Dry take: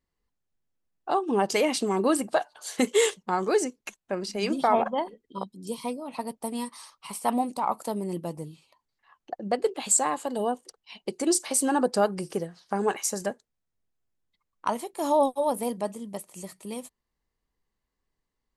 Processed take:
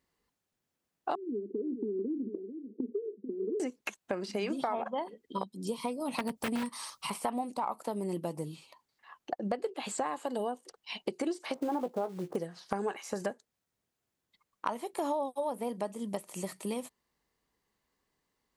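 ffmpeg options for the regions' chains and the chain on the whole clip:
ffmpeg -i in.wav -filter_complex "[0:a]asettb=1/sr,asplit=3[link_01][link_02][link_03];[link_01]atrim=end=1.154[link_04];[link_02]atrim=start=1.15:end=3.6,asetpts=PTS-STARTPTS,afade=type=in:duration=0.004:curve=qsin,afade=type=out:start_time=2.446:duration=0.004:curve=qsin,acompressor=threshold=-29dB:ratio=6:attack=3.2:release=140:knee=1:detection=peak,asuperpass=centerf=300:order=12:qfactor=1.3,aecho=1:1:441:0.237,atrim=end_sample=108045[link_05];[link_03]atrim=start=3.596[link_06];[link_04][link_05]acrossfade=duration=0.004:curve1=hsin:curve2=qsin[link_07];[link_07][link_06]acrossfade=duration=0.004:curve1=qsin:curve2=hsin,asettb=1/sr,asplit=3[link_08][link_09][link_10];[link_08]atrim=end=6.004[link_11];[link_09]atrim=start=6:end=7.1,asetpts=PTS-STARTPTS,afade=type=in:duration=0.004:curve=qsin,afade=type=out:start_time=1.096:duration=0.004:curve=qsin,bass=frequency=250:gain=10,treble=frequency=4000:gain=12,aeval=exprs='(mod(9.44*val(0)+1,2)-1)/9.44':channel_layout=same[link_12];[link_10]atrim=start=7.096[link_13];[link_11][link_12]acrossfade=duration=0.004:curve1=hsin:curve2=qsin[link_14];[link_14][link_13]acrossfade=duration=0.004:curve1=qsin:curve2=hsin,asettb=1/sr,asplit=3[link_15][link_16][link_17];[link_15]atrim=end=11.544[link_18];[link_16]atrim=start=11.54:end=12.36,asetpts=PTS-STARTPTS,afade=type=in:duration=0.004:curve=qsin,afade=type=out:start_time=0.816:duration=0.004:curve=qsin,lowpass=frequency=1100:width=0.5412,lowpass=frequency=1100:width=1.3066,acrusher=bits=5:mode=log:mix=0:aa=0.000001,asplit=2[link_19][link_20];[link_20]adelay=17,volume=-10dB[link_21];[link_19][link_21]amix=inputs=2:normalize=0,atrim=end_sample=36162[link_22];[link_17]atrim=start=12.356[link_23];[link_18][link_22]acrossfade=duration=0.004:curve1=hsin:curve2=qsin[link_24];[link_24][link_23]acrossfade=duration=0.004:curve1=qsin:curve2=hsin,acrossover=split=3300[link_25][link_26];[link_26]acompressor=threshold=-48dB:ratio=4:attack=1:release=60[link_27];[link_25][link_27]amix=inputs=2:normalize=0,highpass=frequency=170:poles=1,acompressor=threshold=-37dB:ratio=6,volume=6dB" out.wav

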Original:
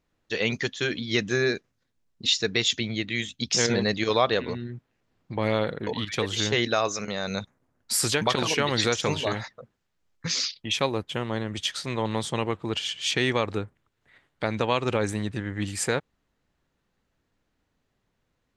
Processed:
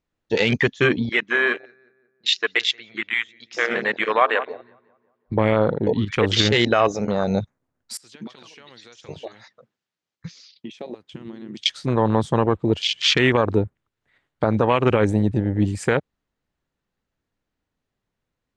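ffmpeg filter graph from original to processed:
ffmpeg -i in.wav -filter_complex "[0:a]asettb=1/sr,asplit=3[link_01][link_02][link_03];[link_01]atrim=end=1.094[link_04];[link_02]atrim=start=1.09:end=5.32,asetpts=PTS-STARTPTS,afade=type=in:duration=0.004:curve=qsin,afade=type=out:start_time=4.226:duration=0.004:curve=qsin,bandpass=frequency=1500:width_type=q:width=0.97,asplit=2[link_05][link_06];[link_06]adelay=179,lowpass=frequency=1700:poles=1,volume=-12dB,asplit=2[link_07][link_08];[link_08]adelay=179,lowpass=frequency=1700:poles=1,volume=0.54,asplit=2[link_09][link_10];[link_10]adelay=179,lowpass=frequency=1700:poles=1,volume=0.54,asplit=2[link_11][link_12];[link_12]adelay=179,lowpass=frequency=1700:poles=1,volume=0.54,asplit=2[link_13][link_14];[link_14]adelay=179,lowpass=frequency=1700:poles=1,volume=0.54,asplit=2[link_15][link_16];[link_16]adelay=179,lowpass=frequency=1700:poles=1,volume=0.54[link_17];[link_05][link_07][link_09][link_11][link_13][link_15][link_17]amix=inputs=7:normalize=0,atrim=end_sample=186543[link_18];[link_03]atrim=start=5.316[link_19];[link_04][link_18]acrossfade=duration=0.004:curve1=hsin:curve2=qsin[link_20];[link_20][link_19]acrossfade=duration=0.004:curve1=qsin:curve2=hsin,asettb=1/sr,asplit=3[link_21][link_22][link_23];[link_21]atrim=end=7.974[link_24];[link_22]atrim=start=7.97:end=11.66,asetpts=PTS-STARTPTS,afade=type=in:duration=0.004:curve=qsin,afade=type=out:start_time=3.686:duration=0.004:curve=qsin,aemphasis=mode=production:type=75fm,acompressor=threshold=-34dB:ratio=12:attack=3.2:release=140:knee=1:detection=peak,highpass=150,lowpass=4500[link_25];[link_23]atrim=start=11.656[link_26];[link_24][link_25]acrossfade=duration=0.004:curve1=hsin:curve2=qsin[link_27];[link_27][link_26]acrossfade=duration=0.004:curve1=qsin:curve2=hsin,afwtdn=0.0282,lowpass=10000,alimiter=level_in=15dB:limit=-1dB:release=50:level=0:latency=1,volume=-4.5dB" out.wav

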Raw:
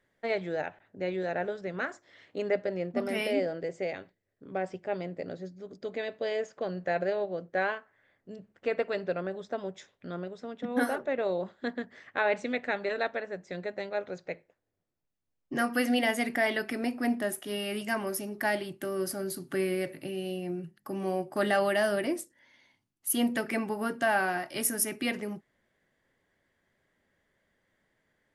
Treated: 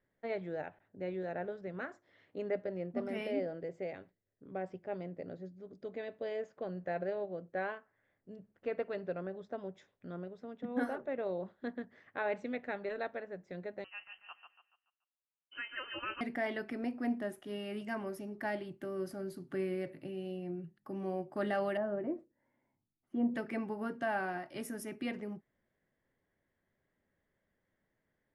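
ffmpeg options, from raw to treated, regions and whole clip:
ffmpeg -i in.wav -filter_complex "[0:a]asettb=1/sr,asplit=3[link_01][link_02][link_03];[link_01]atrim=end=13.844[link_04];[link_02]atrim=start=13.84:end=16.21,asetpts=PTS-STARTPTS,afade=type=in:duration=0.004:curve=qsin,afade=type=out:start_time=2.366:duration=0.004:curve=qsin,highpass=frequency=820:poles=1,aecho=1:1:143|286|429|572|715:0.447|0.174|0.0679|0.0265|0.0103,atrim=end_sample=104517,lowpass=frequency=2800:width_type=q:width=0.5098,lowpass=frequency=2800:width_type=q:width=0.6013,lowpass=frequency=2800:width_type=q:width=0.9,lowpass=frequency=2800:width_type=q:width=2.563,afreqshift=-3300[link_05];[link_03]atrim=start=16.206[link_06];[link_04][link_05]acrossfade=duration=0.004:curve1=hsin:curve2=qsin[link_07];[link_07][link_06]acrossfade=duration=0.004:curve1=qsin:curve2=hsin,asettb=1/sr,asplit=3[link_08][link_09][link_10];[link_08]atrim=end=21.774[link_11];[link_09]atrim=start=21.77:end=23.34,asetpts=PTS-STARTPTS,afade=type=in:duration=0.004:curve=qsin,afade=type=out:start_time=1.566:duration=0.004:curve=qsin,lowpass=1000,asplit=2[link_12][link_13];[link_13]adelay=13,volume=-14dB[link_14];[link_12][link_14]amix=inputs=2:normalize=0,atrim=end_sample=69237[link_15];[link_10]atrim=start=23.336[link_16];[link_11][link_15]acrossfade=duration=0.004:curve1=hsin:curve2=qsin[link_17];[link_17][link_16]acrossfade=duration=0.004:curve1=qsin:curve2=hsin,lowpass=frequency=2100:poles=1,lowshelf=frequency=360:gain=4,volume=-8dB" out.wav

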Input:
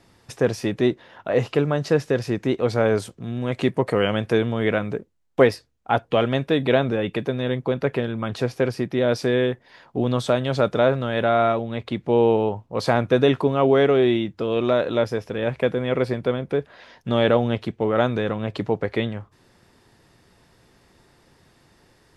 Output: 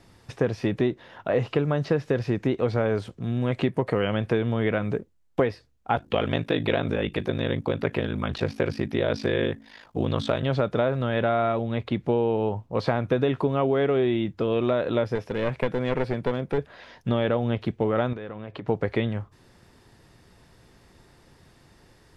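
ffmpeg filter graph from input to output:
ffmpeg -i in.wav -filter_complex "[0:a]asettb=1/sr,asplit=3[link_01][link_02][link_03];[link_01]atrim=end=5.964[link_04];[link_02]atrim=start=5.96:end=10.43,asetpts=PTS-STARTPTS,afade=type=in:duration=0.004:curve=qsin,afade=type=out:start_time=4.466:duration=0.004:curve=qsin,bandreject=frequency=82.27:width_type=h:width=4,bandreject=frequency=164.54:width_type=h:width=4,bandreject=frequency=246.81:width_type=h:width=4,bandreject=frequency=329.08:width_type=h:width=4,aeval=exprs='val(0)*sin(2*PI*26*n/s)':channel_layout=same,highshelf=frequency=2300:gain=8.5[link_05];[link_03]atrim=start=10.426[link_06];[link_04][link_05]acrossfade=duration=0.004:curve1=hsin:curve2=qsin[link_07];[link_07][link_06]acrossfade=duration=0.004:curve1=qsin:curve2=hsin,asettb=1/sr,asplit=3[link_08][link_09][link_10];[link_08]atrim=end=15.154[link_11];[link_09]atrim=start=15.15:end=16.58,asetpts=PTS-STARTPTS,afade=type=in:duration=0.004:curve=qsin,afade=type=out:start_time=1.426:duration=0.004:curve=qsin,highpass=frequency=130:poles=1,aeval=exprs='clip(val(0),-1,0.0596)':channel_layout=same[link_12];[link_10]atrim=start=16.576[link_13];[link_11][link_12]acrossfade=duration=0.004:curve1=hsin:curve2=qsin[link_14];[link_14][link_13]acrossfade=duration=0.004:curve1=qsin:curve2=hsin,asettb=1/sr,asplit=3[link_15][link_16][link_17];[link_15]atrim=end=18.134[link_18];[link_16]atrim=start=18.13:end=18.68,asetpts=PTS-STARTPTS,afade=type=in:duration=0.004:curve=qsin,afade=type=out:start_time=0.546:duration=0.004:curve=qsin,bass=frequency=250:gain=-6,treble=frequency=4000:gain=-12,acompressor=threshold=-32dB:ratio=10:attack=3.2:release=140:knee=1:detection=peak[link_19];[link_17]atrim=start=18.676[link_20];[link_18][link_19]acrossfade=duration=0.004:curve1=hsin:curve2=qsin[link_21];[link_21][link_20]acrossfade=duration=0.004:curve1=qsin:curve2=hsin,acrossover=split=4200[link_22][link_23];[link_23]acompressor=threshold=-57dB:ratio=4:attack=1:release=60[link_24];[link_22][link_24]amix=inputs=2:normalize=0,lowshelf=frequency=120:gain=6,acompressor=threshold=-19dB:ratio=6" out.wav

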